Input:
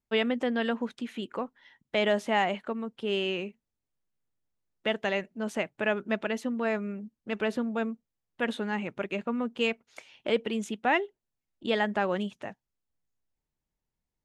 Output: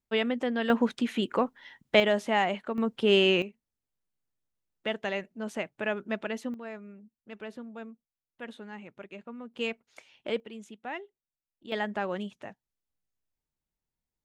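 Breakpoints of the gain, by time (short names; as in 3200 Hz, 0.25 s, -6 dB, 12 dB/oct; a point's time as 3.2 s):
-1 dB
from 0.7 s +7 dB
from 2 s 0 dB
from 2.78 s +7.5 dB
from 3.42 s -3 dB
from 6.54 s -12 dB
from 9.54 s -4.5 dB
from 10.4 s -12.5 dB
from 11.72 s -4 dB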